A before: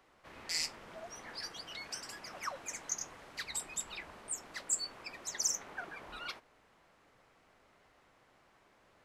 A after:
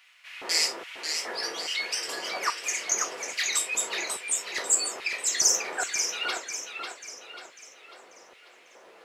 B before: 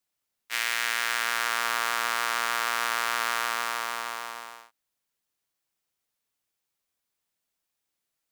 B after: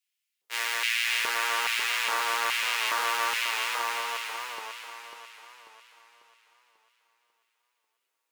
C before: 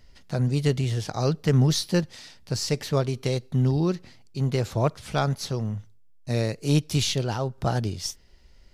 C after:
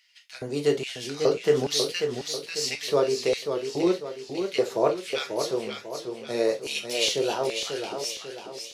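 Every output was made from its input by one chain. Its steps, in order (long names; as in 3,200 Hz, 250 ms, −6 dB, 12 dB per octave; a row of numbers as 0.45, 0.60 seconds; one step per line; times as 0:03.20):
reverb whose tail is shaped and stops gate 90 ms falling, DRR 2 dB
auto-filter high-pass square 1.2 Hz 410–2,400 Hz
feedback echo with a swinging delay time 543 ms, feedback 44%, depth 101 cents, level −6.5 dB
loudness normalisation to −27 LKFS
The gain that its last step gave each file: +9.0, −4.0, −2.5 decibels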